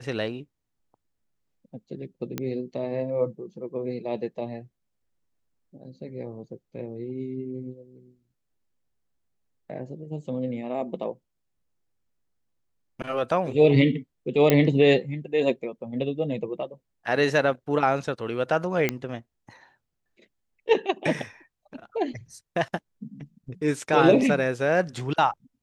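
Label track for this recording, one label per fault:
2.380000	2.380000	pop -14 dBFS
14.500000	14.500000	pop -5 dBFS
18.890000	18.890000	pop -9 dBFS

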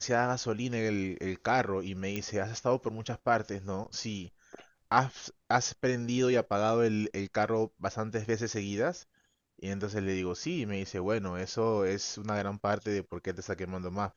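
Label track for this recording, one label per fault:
2.160000	2.160000	pop -19 dBFS

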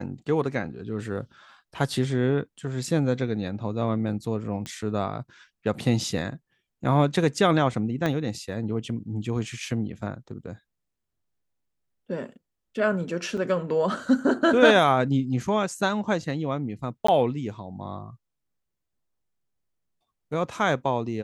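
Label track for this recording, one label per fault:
4.660000	4.660000	pop -20 dBFS
8.060000	8.060000	pop -14 dBFS
13.370000	13.380000	dropout 5.5 ms
17.070000	17.080000	dropout 14 ms

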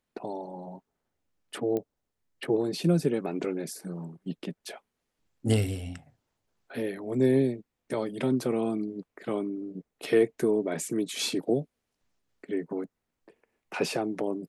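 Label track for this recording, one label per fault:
1.770000	1.770000	pop -20 dBFS

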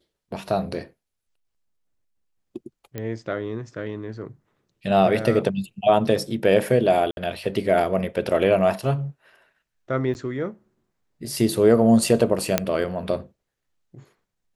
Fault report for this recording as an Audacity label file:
2.980000	2.980000	pop -17 dBFS
7.110000	7.170000	dropout 61 ms
10.140000	10.150000	dropout 9.6 ms
12.580000	12.580000	pop -2 dBFS

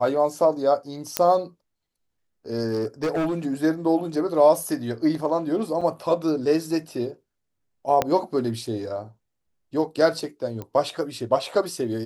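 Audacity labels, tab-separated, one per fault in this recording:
1.170000	1.170000	pop -3 dBFS
2.700000	3.350000	clipped -20.5 dBFS
5.810000	5.820000	dropout 5.6 ms
8.020000	8.020000	pop -7 dBFS
10.620000	10.620000	pop -20 dBFS

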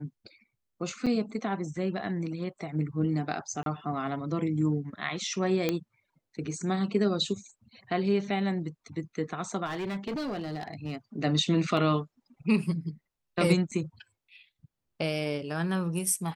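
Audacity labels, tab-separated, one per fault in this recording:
1.060000	1.070000	dropout 6.5 ms
3.630000	3.660000	dropout 32 ms
5.690000	5.690000	pop -13 dBFS
9.650000	10.960000	clipped -29.5 dBFS
11.770000	11.770000	dropout 2.1 ms
13.710000	13.720000	dropout 5.9 ms

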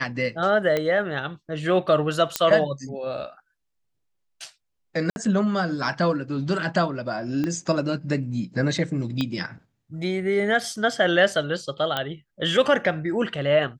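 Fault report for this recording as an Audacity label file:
0.770000	0.770000	pop -11 dBFS
2.360000	2.360000	pop -4 dBFS
5.100000	5.160000	dropout 61 ms
7.440000	7.440000	pop -15 dBFS
9.210000	9.210000	pop -13 dBFS
11.970000	11.970000	pop -11 dBFS

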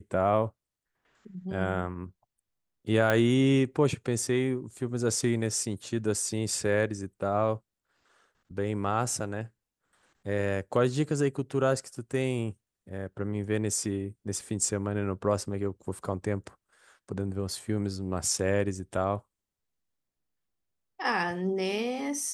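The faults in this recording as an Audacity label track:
3.100000	3.100000	pop -12 dBFS

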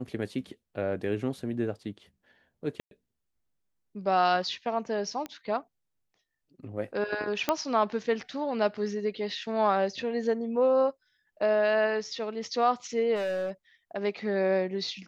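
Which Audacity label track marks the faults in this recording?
2.800000	2.910000	dropout 112 ms
5.260000	5.260000	pop -22 dBFS
7.490000	7.490000	pop -10 dBFS
13.150000	13.510000	clipped -27.5 dBFS

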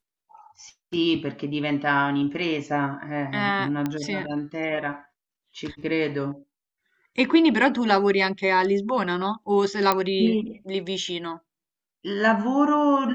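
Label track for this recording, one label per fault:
3.860000	3.860000	pop -14 dBFS
9.920000	9.920000	pop -7 dBFS

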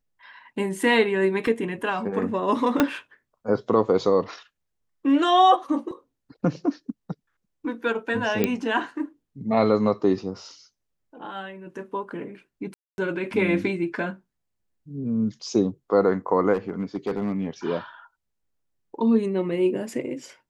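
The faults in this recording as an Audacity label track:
1.470000	1.470000	dropout 2.4 ms
2.800000	2.800000	pop -5 dBFS
5.910000	5.910000	dropout 2.6 ms
8.440000	8.440000	pop -8 dBFS
12.740000	12.980000	dropout 241 ms
16.530000	17.470000	clipped -21 dBFS

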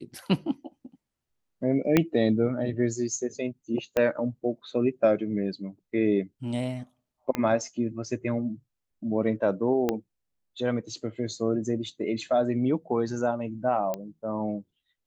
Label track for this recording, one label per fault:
1.970000	1.970000	pop -7 dBFS
3.970000	3.970000	pop -13 dBFS
7.350000	7.350000	pop -14 dBFS
9.890000	9.890000	pop -12 dBFS
13.940000	13.940000	pop -17 dBFS

